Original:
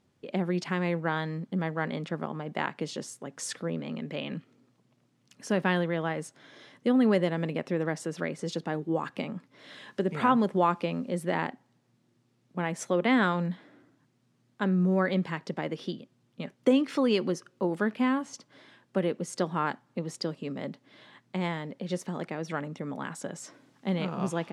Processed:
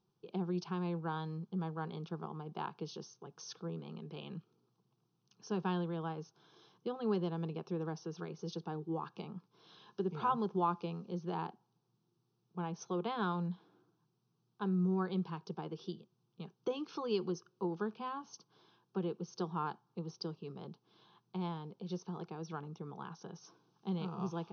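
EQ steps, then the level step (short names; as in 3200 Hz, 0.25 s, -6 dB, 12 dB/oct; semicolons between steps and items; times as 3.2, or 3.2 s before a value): brick-wall FIR low-pass 6400 Hz; fixed phaser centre 390 Hz, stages 8; -6.5 dB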